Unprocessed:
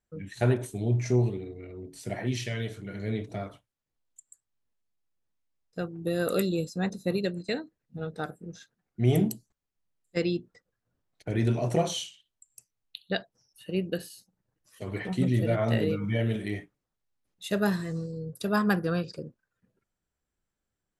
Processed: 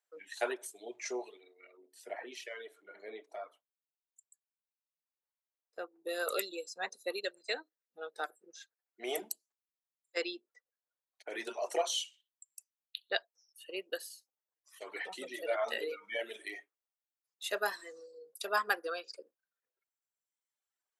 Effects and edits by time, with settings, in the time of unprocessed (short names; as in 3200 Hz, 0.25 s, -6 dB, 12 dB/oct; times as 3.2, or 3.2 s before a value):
1.77–6.09 bell 6100 Hz -11 dB 3 oct
10.35–11.32 high shelf 4500 Hz -6 dB
whole clip: Bessel high-pass 670 Hz, order 6; reverb removal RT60 1.6 s